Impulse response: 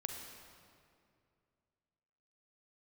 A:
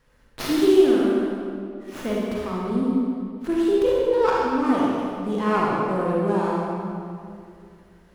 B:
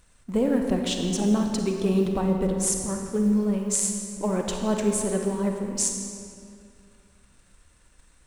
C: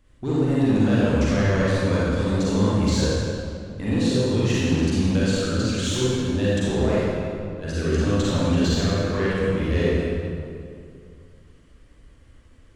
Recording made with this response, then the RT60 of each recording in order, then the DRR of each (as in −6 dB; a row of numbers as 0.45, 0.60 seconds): B; 2.4, 2.4, 2.4 seconds; −5.0, 2.5, −9.0 decibels